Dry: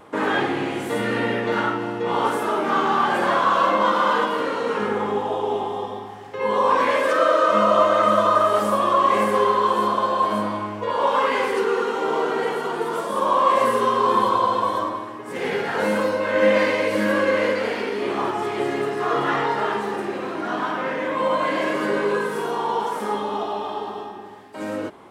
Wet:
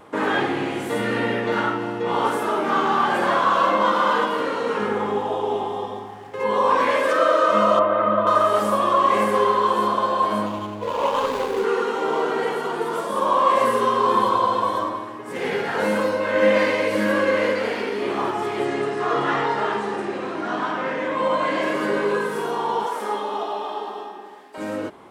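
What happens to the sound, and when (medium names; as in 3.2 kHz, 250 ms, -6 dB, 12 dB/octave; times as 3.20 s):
5.95–6.44 s: median filter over 9 samples
7.79–8.27 s: distance through air 500 m
10.46–11.64 s: median filter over 25 samples
18.65–21.63 s: low-pass 9.6 kHz 24 dB/octave
22.86–24.58 s: high-pass 320 Hz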